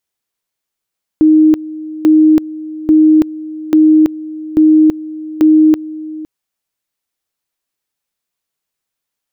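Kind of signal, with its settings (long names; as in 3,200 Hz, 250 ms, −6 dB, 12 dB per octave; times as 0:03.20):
tone at two levels in turn 311 Hz −4 dBFS, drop 18 dB, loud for 0.33 s, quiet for 0.51 s, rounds 6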